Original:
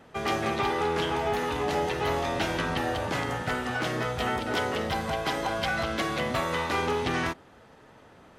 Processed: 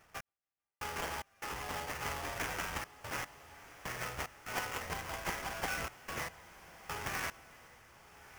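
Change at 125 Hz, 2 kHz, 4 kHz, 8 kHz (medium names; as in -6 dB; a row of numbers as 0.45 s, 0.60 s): -14.0 dB, -9.5 dB, -11.5 dB, -2.5 dB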